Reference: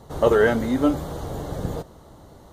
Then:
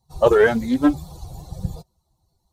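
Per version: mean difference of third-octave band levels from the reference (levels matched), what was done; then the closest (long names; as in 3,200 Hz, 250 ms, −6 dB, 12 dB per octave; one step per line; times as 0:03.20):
10.0 dB: spectral dynamics exaggerated over time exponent 2
highs frequency-modulated by the lows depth 0.19 ms
level +5 dB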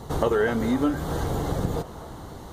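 6.5 dB: parametric band 590 Hz −6.5 dB 0.25 octaves
downward compressor 3 to 1, threshold −31 dBFS, peak gain reduction 13 dB
echo through a band-pass that steps 253 ms, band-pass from 760 Hz, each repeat 0.7 octaves, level −9 dB
level +7.5 dB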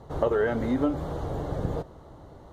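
4.5 dB: low-pass filter 1,900 Hz 6 dB per octave
parametric band 210 Hz −4.5 dB 0.37 octaves
downward compressor 6 to 1, threshold −21 dBFS, peak gain reduction 9 dB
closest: third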